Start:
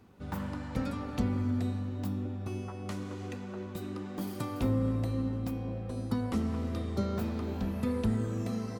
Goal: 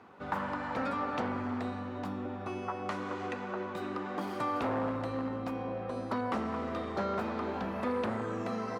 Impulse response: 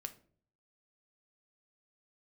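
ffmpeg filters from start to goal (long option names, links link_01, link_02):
-filter_complex "[0:a]asplit=2[link_01][link_02];[link_02]alimiter=level_in=7dB:limit=-24dB:level=0:latency=1,volume=-7dB,volume=1dB[link_03];[link_01][link_03]amix=inputs=2:normalize=0,aeval=exprs='0.0841*(abs(mod(val(0)/0.0841+3,4)-2)-1)':channel_layout=same,bandpass=frequency=1100:width_type=q:width=0.94:csg=0,volume=5.5dB"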